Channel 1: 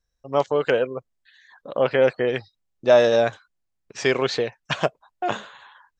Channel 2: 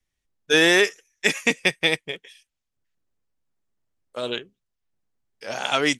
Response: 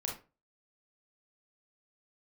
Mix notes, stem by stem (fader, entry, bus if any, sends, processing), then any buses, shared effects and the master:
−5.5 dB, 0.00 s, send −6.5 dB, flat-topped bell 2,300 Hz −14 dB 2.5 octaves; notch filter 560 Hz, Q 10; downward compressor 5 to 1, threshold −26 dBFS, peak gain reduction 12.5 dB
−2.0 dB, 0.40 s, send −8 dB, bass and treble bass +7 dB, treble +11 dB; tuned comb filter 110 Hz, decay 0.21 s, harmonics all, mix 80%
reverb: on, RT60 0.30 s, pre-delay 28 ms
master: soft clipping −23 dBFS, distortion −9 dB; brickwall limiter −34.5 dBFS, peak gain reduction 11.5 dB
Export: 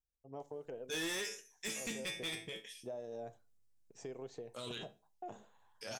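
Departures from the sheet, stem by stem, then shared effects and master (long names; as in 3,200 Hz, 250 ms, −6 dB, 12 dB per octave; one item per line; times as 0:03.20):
stem 1 −5.5 dB → −17.5 dB
reverb return −9.0 dB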